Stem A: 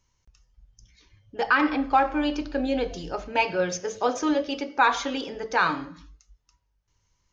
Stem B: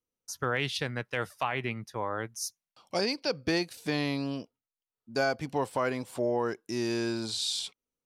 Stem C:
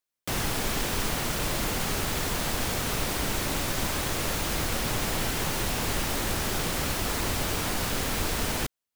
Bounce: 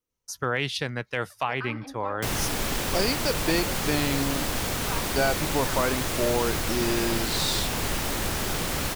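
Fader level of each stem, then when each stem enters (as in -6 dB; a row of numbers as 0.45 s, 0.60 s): -17.0 dB, +3.0 dB, +0.5 dB; 0.10 s, 0.00 s, 1.95 s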